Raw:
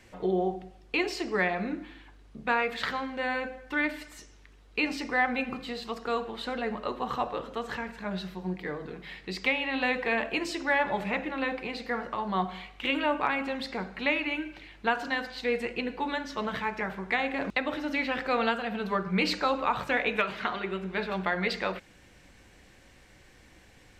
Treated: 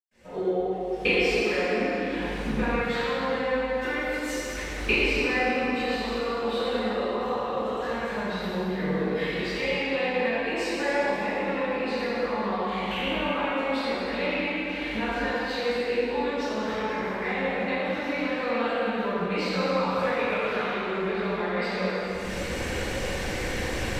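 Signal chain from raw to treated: recorder AGC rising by 58 dB/s; peaking EQ 500 Hz +6.5 dB 0.41 oct; reverberation RT60 3.6 s, pre-delay 111 ms, DRR -60 dB; trim -5.5 dB

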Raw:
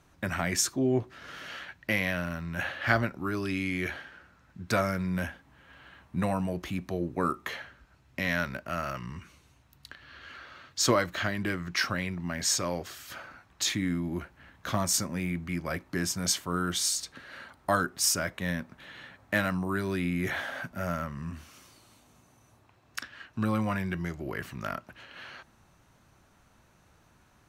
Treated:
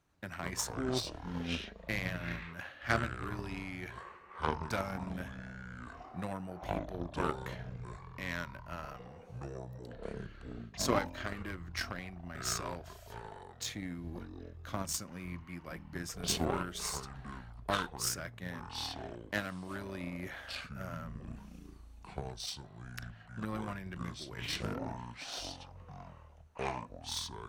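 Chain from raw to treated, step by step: ever faster or slower copies 91 ms, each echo -7 st, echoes 3; Chebyshev shaper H 7 -21 dB, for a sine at -7.5 dBFS; trim -5.5 dB

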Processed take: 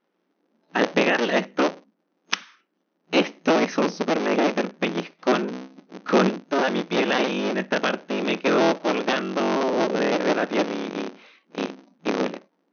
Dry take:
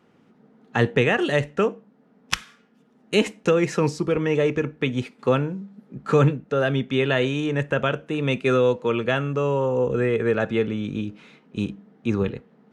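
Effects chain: cycle switcher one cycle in 3, inverted; spectral noise reduction 14 dB; FFT band-pass 170–6400 Hz

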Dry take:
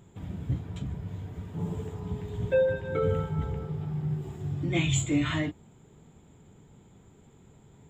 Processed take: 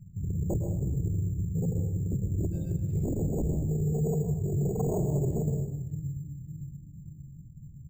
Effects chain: local Wiener filter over 41 samples; Chebyshev band-stop 160–5000 Hz, order 3; resonant high shelf 4.9 kHz +11.5 dB, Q 1.5; low-pass that closes with the level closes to 320 Hz, closed at -25.5 dBFS; FFT filter 200 Hz 0 dB, 960 Hz +10 dB, 1.7 kHz +6 dB, 8.5 kHz -27 dB; feedback delay 571 ms, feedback 46%, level -15 dB; sine folder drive 12 dB, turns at -19.5 dBFS; on a send at -5 dB: reverberation RT60 0.90 s, pre-delay 103 ms; on the sum: careless resampling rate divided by 6×, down none, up hold; trim -6.5 dB

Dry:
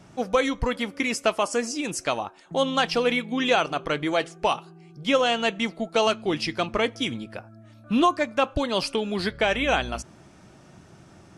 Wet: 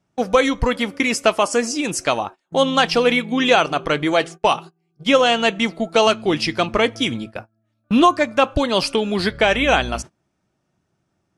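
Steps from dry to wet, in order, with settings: gate -38 dBFS, range -27 dB; trim +6.5 dB

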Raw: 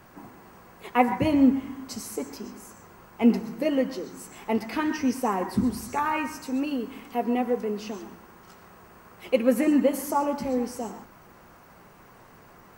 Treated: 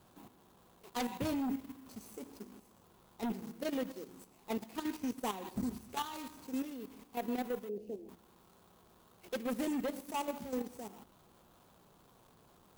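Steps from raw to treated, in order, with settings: median filter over 25 samples; Chebyshev shaper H 5 -7 dB, 7 -41 dB, 8 -30 dB, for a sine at -7 dBFS; pre-emphasis filter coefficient 0.8; level held to a coarse grid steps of 10 dB; 7.69–8.09 s: FFT filter 240 Hz 0 dB, 480 Hz +10 dB, 1.1 kHz -21 dB, 2.6 kHz -12 dB; trim -4 dB

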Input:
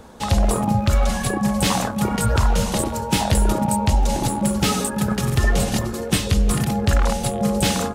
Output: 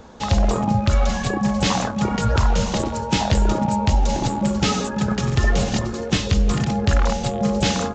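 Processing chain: resampled via 16 kHz

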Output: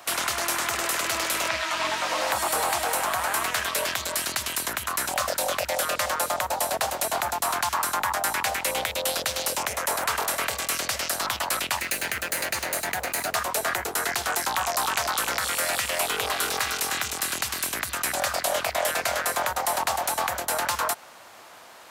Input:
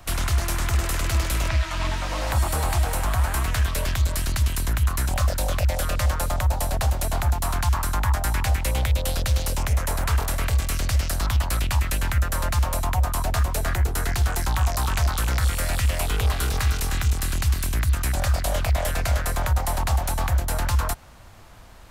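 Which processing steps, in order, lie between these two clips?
11.77–13.35 s: comb filter that takes the minimum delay 0.45 ms; high-pass 440 Hz 12 dB/octave; in parallel at -2 dB: peak limiter -22 dBFS, peak gain reduction 8.5 dB

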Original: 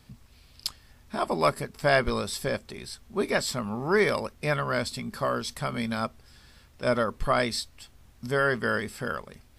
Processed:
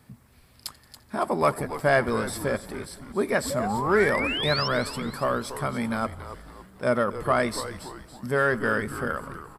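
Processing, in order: high-pass 92 Hz; high-order bell 4.2 kHz -8 dB; painted sound rise, 3.50–4.68 s, 530–5600 Hz -32 dBFS; in parallel at -9 dB: saturation -22.5 dBFS, distortion -10 dB; on the sum: frequency-shifting echo 280 ms, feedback 46%, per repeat -140 Hz, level -12 dB; modulated delay 86 ms, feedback 76%, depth 88 cents, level -23.5 dB

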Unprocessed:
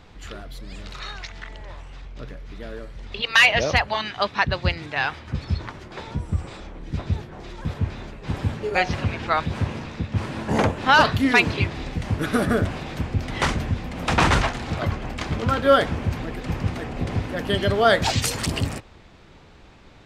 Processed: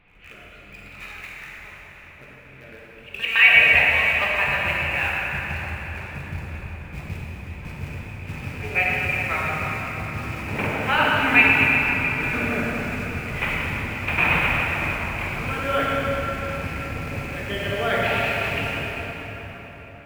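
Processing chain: four-pole ladder low-pass 2.6 kHz, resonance 80%; in parallel at -10 dB: bit crusher 6-bit; on the sum: pre-echo 161 ms -18.5 dB; plate-style reverb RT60 4.9 s, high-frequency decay 0.65×, DRR -5.5 dB; trim -1 dB

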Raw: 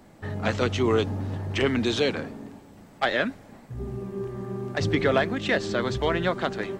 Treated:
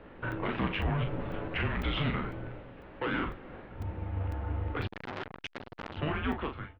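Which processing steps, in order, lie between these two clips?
fade out at the end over 1.03 s; in parallel at -2 dB: compression 6:1, threshold -32 dBFS, peak gain reduction 14 dB; 0.93–1.55 s: on the sum: comb 6.9 ms, depth 84%; one-sided clip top -27 dBFS; mistuned SSB -300 Hz 330–3300 Hz; peak limiter -23.5 dBFS, peak gain reduction 11.5 dB; on a send: early reflections 16 ms -9 dB, 40 ms -6 dB; on the sum: crackling interface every 0.50 s, samples 128, zero, from 0.32 s; 4.87–5.97 s: transformer saturation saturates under 2.3 kHz

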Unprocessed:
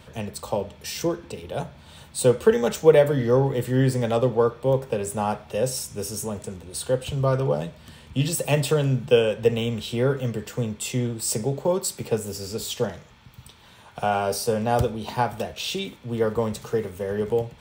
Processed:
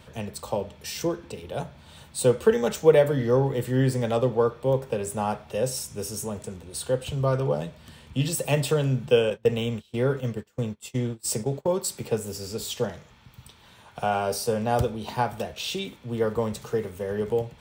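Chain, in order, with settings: 9.30–11.84 s: gate -28 dBFS, range -25 dB; trim -2 dB

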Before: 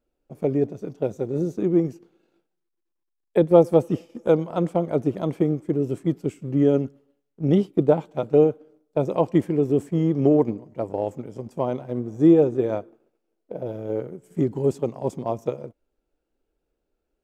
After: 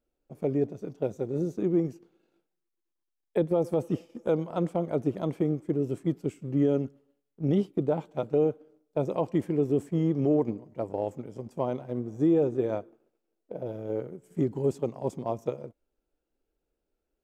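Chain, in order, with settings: peak limiter -11 dBFS, peak gain reduction 9 dB; trim -4.5 dB

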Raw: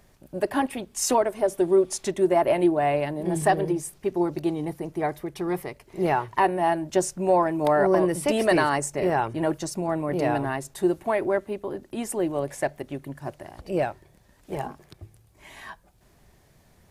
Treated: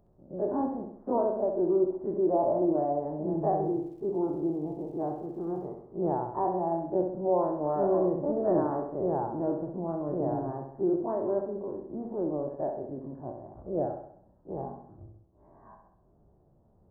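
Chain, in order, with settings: every event in the spectrogram widened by 60 ms; Gaussian low-pass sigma 11 samples; tilt EQ +1.5 dB/octave; 3.59–5.67 s: crackle 280 per s -57 dBFS; flutter echo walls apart 11.3 m, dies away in 0.66 s; trim -4.5 dB

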